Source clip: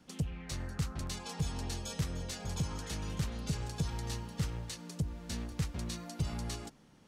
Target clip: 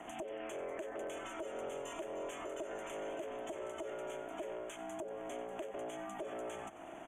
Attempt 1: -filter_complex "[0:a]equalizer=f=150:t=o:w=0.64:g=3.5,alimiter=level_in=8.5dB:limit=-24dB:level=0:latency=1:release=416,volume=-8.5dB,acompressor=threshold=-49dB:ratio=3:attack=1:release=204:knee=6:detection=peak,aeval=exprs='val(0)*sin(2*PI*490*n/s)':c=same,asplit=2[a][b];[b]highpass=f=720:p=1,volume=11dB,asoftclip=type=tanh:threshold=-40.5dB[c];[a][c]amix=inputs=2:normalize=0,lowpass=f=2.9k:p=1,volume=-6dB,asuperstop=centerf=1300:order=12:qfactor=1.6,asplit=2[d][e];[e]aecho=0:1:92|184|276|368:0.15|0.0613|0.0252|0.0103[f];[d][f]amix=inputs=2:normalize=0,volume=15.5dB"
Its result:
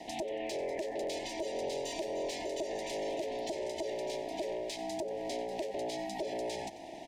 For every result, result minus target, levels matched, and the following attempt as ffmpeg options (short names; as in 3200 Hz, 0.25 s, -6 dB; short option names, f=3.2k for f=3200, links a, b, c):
compressor: peak gain reduction -7 dB; 4000 Hz band +5.0 dB
-filter_complex "[0:a]equalizer=f=150:t=o:w=0.64:g=3.5,alimiter=level_in=8.5dB:limit=-24dB:level=0:latency=1:release=416,volume=-8.5dB,acompressor=threshold=-59.5dB:ratio=3:attack=1:release=204:knee=6:detection=peak,aeval=exprs='val(0)*sin(2*PI*490*n/s)':c=same,asplit=2[a][b];[b]highpass=f=720:p=1,volume=11dB,asoftclip=type=tanh:threshold=-40.5dB[c];[a][c]amix=inputs=2:normalize=0,lowpass=f=2.9k:p=1,volume=-6dB,asuperstop=centerf=1300:order=12:qfactor=1.6,asplit=2[d][e];[e]aecho=0:1:92|184|276|368:0.15|0.0613|0.0252|0.0103[f];[d][f]amix=inputs=2:normalize=0,volume=15.5dB"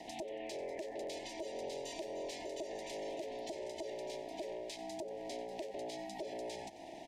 4000 Hz band +5.5 dB
-filter_complex "[0:a]equalizer=f=150:t=o:w=0.64:g=3.5,alimiter=level_in=8.5dB:limit=-24dB:level=0:latency=1:release=416,volume=-8.5dB,acompressor=threshold=-59.5dB:ratio=3:attack=1:release=204:knee=6:detection=peak,aeval=exprs='val(0)*sin(2*PI*490*n/s)':c=same,asplit=2[a][b];[b]highpass=f=720:p=1,volume=11dB,asoftclip=type=tanh:threshold=-40.5dB[c];[a][c]amix=inputs=2:normalize=0,lowpass=f=2.9k:p=1,volume=-6dB,asuperstop=centerf=4600:order=12:qfactor=1.6,asplit=2[d][e];[e]aecho=0:1:92|184|276|368:0.15|0.0613|0.0252|0.0103[f];[d][f]amix=inputs=2:normalize=0,volume=15.5dB"